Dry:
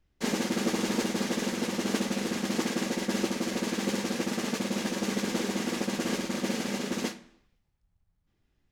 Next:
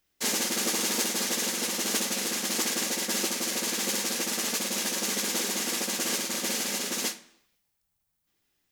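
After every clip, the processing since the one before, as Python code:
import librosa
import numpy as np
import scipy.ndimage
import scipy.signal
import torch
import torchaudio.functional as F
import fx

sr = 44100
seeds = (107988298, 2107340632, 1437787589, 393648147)

y = fx.riaa(x, sr, side='recording')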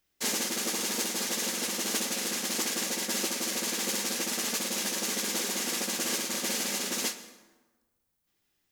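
y = fx.rider(x, sr, range_db=10, speed_s=0.5)
y = fx.rev_plate(y, sr, seeds[0], rt60_s=1.3, hf_ratio=0.6, predelay_ms=105, drr_db=15.0)
y = y * 10.0 ** (-2.0 / 20.0)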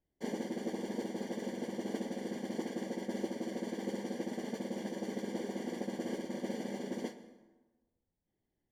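y = scipy.signal.lfilter(np.full(34, 1.0 / 34), 1.0, x)
y = y * 10.0 ** (1.0 / 20.0)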